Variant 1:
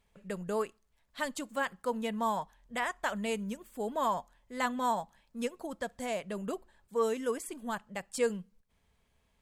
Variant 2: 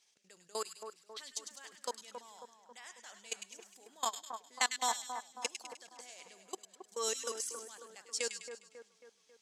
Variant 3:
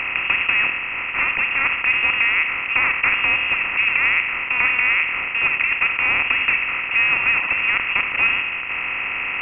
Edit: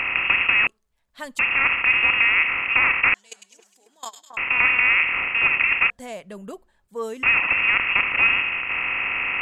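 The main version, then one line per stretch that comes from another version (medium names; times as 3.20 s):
3
0.67–1.39 s: from 1
3.14–4.37 s: from 2
5.90–7.23 s: from 1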